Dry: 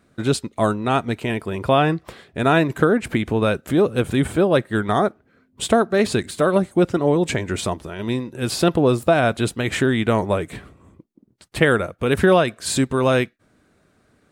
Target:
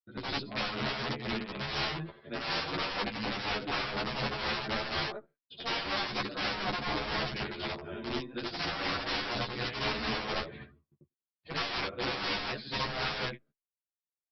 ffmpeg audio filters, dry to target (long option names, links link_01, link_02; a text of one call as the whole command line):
ffmpeg -i in.wav -filter_complex "[0:a]afftfilt=real='re':imag='-im':win_size=8192:overlap=0.75,highpass=100,aeval=exprs='(tanh(5.01*val(0)+0.3)-tanh(0.3))/5.01':channel_layout=same,agate=range=-38dB:threshold=-52dB:ratio=16:detection=peak,aresample=11025,aeval=exprs='(mod(15*val(0)+1,2)-1)/15':channel_layout=same,aresample=44100,tremolo=f=4.1:d=0.53,afftdn=noise_reduction=13:noise_floor=-54,asplit=2[link_01][link_02];[link_02]adelay=14,volume=-5dB[link_03];[link_01][link_03]amix=inputs=2:normalize=0,asplit=2[link_04][link_05];[link_05]adelay=8.3,afreqshift=0.34[link_06];[link_04][link_06]amix=inputs=2:normalize=1,volume=-1dB" out.wav